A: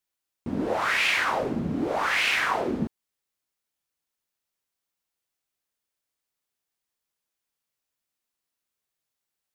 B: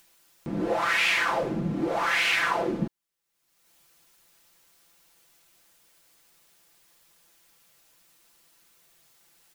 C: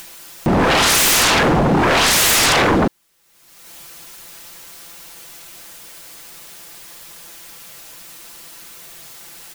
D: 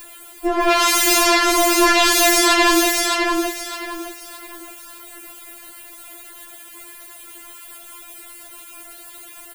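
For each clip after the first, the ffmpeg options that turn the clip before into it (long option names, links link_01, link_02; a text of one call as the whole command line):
ffmpeg -i in.wav -af "aecho=1:1:5.9:0.73,acompressor=mode=upward:threshold=-40dB:ratio=2.5,volume=-2dB" out.wav
ffmpeg -i in.wav -af "aeval=exprs='0.282*sin(PI/2*8.91*val(0)/0.282)':channel_layout=same" out.wav
ffmpeg -i in.wav -filter_complex "[0:a]asplit=2[link_01][link_02];[link_02]aecho=0:1:615|1230|1845|2460:0.668|0.207|0.0642|0.0199[link_03];[link_01][link_03]amix=inputs=2:normalize=0,afftfilt=real='re*4*eq(mod(b,16),0)':imag='im*4*eq(mod(b,16),0)':win_size=2048:overlap=0.75" out.wav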